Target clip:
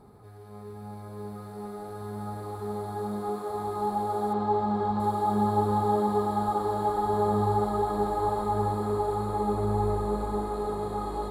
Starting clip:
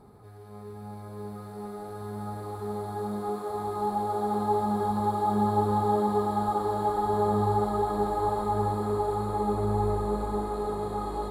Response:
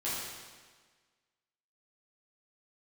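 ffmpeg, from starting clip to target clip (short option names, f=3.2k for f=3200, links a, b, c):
-filter_complex "[0:a]asettb=1/sr,asplit=3[a][b][c];[a]atrim=end=4.334[d];[b]atrim=start=4.33:end=5,asetpts=PTS-STARTPTS,afade=t=in:d=0.004:c=qsin,afade=t=out:st=0.666:d=0.004:c=qsin,lowpass=4.5k[e];[c]atrim=start=4.996[f];[d][e]acrossfade=d=0.004:c1=hsin:c2=qsin[g];[g][f]acrossfade=d=0.004:c1=qsin:c2=hsin"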